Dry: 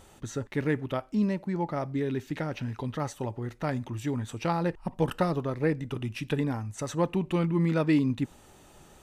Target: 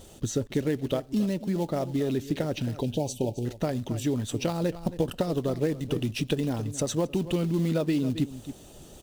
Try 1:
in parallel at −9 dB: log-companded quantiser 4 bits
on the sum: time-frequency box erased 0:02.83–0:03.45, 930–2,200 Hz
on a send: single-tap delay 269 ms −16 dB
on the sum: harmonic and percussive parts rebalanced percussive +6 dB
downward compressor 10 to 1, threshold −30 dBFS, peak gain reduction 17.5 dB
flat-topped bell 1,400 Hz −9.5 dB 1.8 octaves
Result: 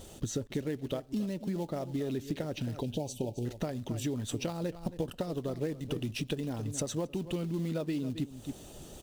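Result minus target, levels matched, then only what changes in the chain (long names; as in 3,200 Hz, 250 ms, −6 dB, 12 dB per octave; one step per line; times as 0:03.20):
downward compressor: peak gain reduction +7.5 dB
change: downward compressor 10 to 1, threshold −21.5 dBFS, peak gain reduction 10 dB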